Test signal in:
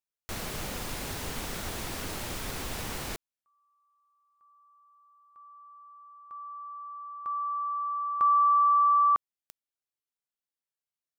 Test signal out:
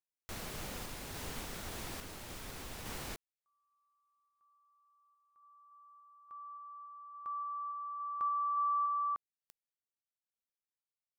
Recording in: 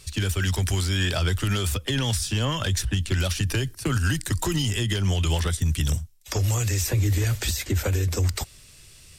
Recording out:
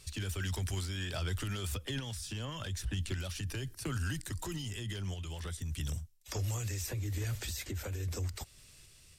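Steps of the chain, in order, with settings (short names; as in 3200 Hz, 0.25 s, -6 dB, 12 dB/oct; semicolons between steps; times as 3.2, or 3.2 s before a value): limiter -21 dBFS; random-step tremolo 3.5 Hz; gain -6.5 dB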